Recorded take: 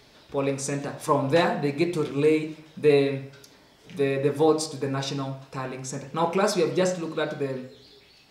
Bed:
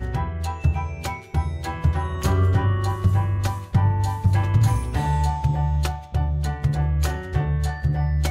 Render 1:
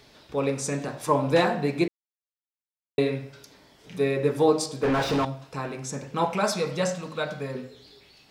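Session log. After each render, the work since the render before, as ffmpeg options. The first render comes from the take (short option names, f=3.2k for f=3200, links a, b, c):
-filter_complex "[0:a]asettb=1/sr,asplit=3[a][b][c];[a]atrim=end=4.834[d];[b]atrim=start=4.83:end=5.25,asetpts=PTS-STARTPTS,afade=t=in:d=0.004:c=qsin,afade=t=out:st=0.416:d=0.004:c=qsin,asplit=2[e][f];[f]highpass=f=720:p=1,volume=32dB,asoftclip=type=tanh:threshold=-15dB[g];[e][g]amix=inputs=2:normalize=0,lowpass=f=1.1k:p=1,volume=-6dB[h];[c]atrim=start=5.246[i];[d][h]acrossfade=d=0.004:c1=hsin:c2=qsin[j];[j][i]acrossfade=d=0.004:c1=qsin:c2=hsin,asettb=1/sr,asplit=3[k][l][m];[k]atrim=end=6.244[n];[l]atrim=start=6.24:end=7.55,asetpts=PTS-STARTPTS,afade=t=in:d=0.004:c=qsin,afade=t=out:st=1.306:d=0.004:c=qsin,equalizer=f=350:t=o:w=0.47:g=-14.5[o];[m]atrim=start=7.546[p];[n][o]acrossfade=d=0.004:c1=hsin:c2=qsin[q];[q][p]acrossfade=d=0.004:c1=qsin:c2=hsin,asplit=3[r][s][t];[r]atrim=end=1.88,asetpts=PTS-STARTPTS,afade=t=out:st=1.876:d=0.004:c=hsin[u];[s]atrim=start=1.88:end=2.98,asetpts=PTS-STARTPTS,volume=0[v];[t]atrim=start=2.98,asetpts=PTS-STARTPTS,afade=t=in:d=0.004:c=hsin[w];[u][v][w]concat=n=3:v=0:a=1"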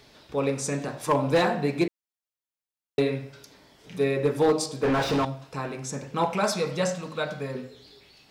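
-af "asoftclip=type=hard:threshold=-15dB"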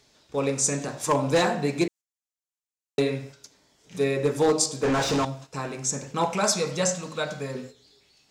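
-af "equalizer=f=7k:t=o:w=0.83:g=11.5,agate=range=-9dB:threshold=-42dB:ratio=16:detection=peak"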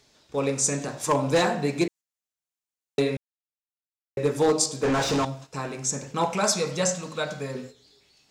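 -filter_complex "[0:a]asplit=3[a][b][c];[a]atrim=end=3.17,asetpts=PTS-STARTPTS,afade=t=out:st=3.166:d=0.004:c=hsin[d];[b]atrim=start=3.17:end=4.17,asetpts=PTS-STARTPTS,volume=0[e];[c]atrim=start=4.17,asetpts=PTS-STARTPTS,afade=t=in:d=0.004:c=hsin[f];[d][e][f]concat=n=3:v=0:a=1"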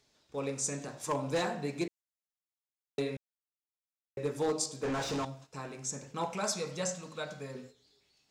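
-af "volume=-10dB"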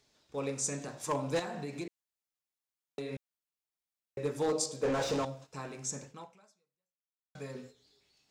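-filter_complex "[0:a]asettb=1/sr,asplit=3[a][b][c];[a]atrim=end=1.394[d];[b]atrim=start=1.39:end=3.13,asetpts=PTS-STARTPTS,afade=t=in:d=0.004:c=qsin,afade=t=out:st=1.736:d=0.004:c=qsin,acompressor=threshold=-35dB:ratio=5:attack=3.2:release=140:knee=1:detection=peak[e];[c]atrim=start=3.126[f];[d][e]acrossfade=d=0.004:c1=hsin:c2=qsin[g];[g][f]acrossfade=d=0.004:c1=qsin:c2=hsin,asettb=1/sr,asplit=3[h][i][j];[h]atrim=end=4.524[k];[i]atrim=start=4.52:end=5.47,asetpts=PTS-STARTPTS,afade=t=in:d=0.004:c=qsin,afade=t=out:st=0.946:d=0.004:c=qsin,equalizer=f=520:t=o:w=0.4:g=9[l];[j]atrim=start=5.466[m];[k][l]acrossfade=d=0.004:c1=hsin:c2=qsin[n];[n][m]acrossfade=d=0.004:c1=qsin:c2=hsin,asplit=2[o][p];[o]atrim=end=7.35,asetpts=PTS-STARTPTS,afade=t=out:st=6.04:d=1.31:c=exp[q];[p]atrim=start=7.35,asetpts=PTS-STARTPTS,afade=t=in:d=0.004:c=hsin[r];[q][r]concat=n=2:v=0:a=1"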